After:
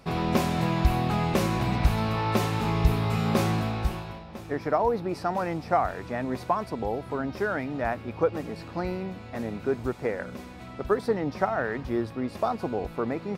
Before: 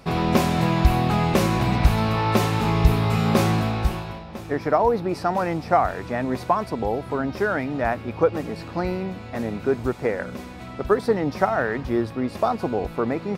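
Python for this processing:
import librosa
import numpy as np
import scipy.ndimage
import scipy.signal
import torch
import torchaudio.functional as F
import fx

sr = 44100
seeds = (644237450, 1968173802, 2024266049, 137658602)

y = fx.high_shelf(x, sr, hz=fx.line((11.08, 12000.0), (11.63, 6500.0)), db=-8.0, at=(11.08, 11.63), fade=0.02)
y = F.gain(torch.from_numpy(y), -5.0).numpy()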